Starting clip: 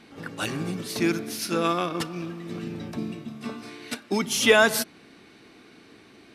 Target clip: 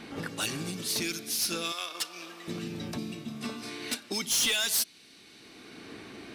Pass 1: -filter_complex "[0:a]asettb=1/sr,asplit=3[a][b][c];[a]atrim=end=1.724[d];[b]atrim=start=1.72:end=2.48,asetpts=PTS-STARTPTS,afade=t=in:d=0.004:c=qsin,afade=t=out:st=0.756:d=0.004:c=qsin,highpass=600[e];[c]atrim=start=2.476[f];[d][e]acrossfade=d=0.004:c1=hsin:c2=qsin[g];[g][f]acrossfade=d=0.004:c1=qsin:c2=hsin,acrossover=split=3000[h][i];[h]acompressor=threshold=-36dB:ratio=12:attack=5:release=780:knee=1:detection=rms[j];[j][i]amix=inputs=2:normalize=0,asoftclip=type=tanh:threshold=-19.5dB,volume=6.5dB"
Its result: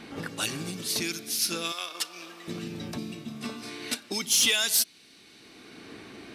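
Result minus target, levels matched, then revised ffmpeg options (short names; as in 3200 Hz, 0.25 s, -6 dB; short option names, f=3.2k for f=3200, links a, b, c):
soft clip: distortion -11 dB
-filter_complex "[0:a]asettb=1/sr,asplit=3[a][b][c];[a]atrim=end=1.724[d];[b]atrim=start=1.72:end=2.48,asetpts=PTS-STARTPTS,afade=t=in:d=0.004:c=qsin,afade=t=out:st=0.756:d=0.004:c=qsin,highpass=600[e];[c]atrim=start=2.476[f];[d][e]acrossfade=d=0.004:c1=hsin:c2=qsin[g];[g][f]acrossfade=d=0.004:c1=qsin:c2=hsin,acrossover=split=3000[h][i];[h]acompressor=threshold=-36dB:ratio=12:attack=5:release=780:knee=1:detection=rms[j];[j][i]amix=inputs=2:normalize=0,asoftclip=type=tanh:threshold=-29dB,volume=6.5dB"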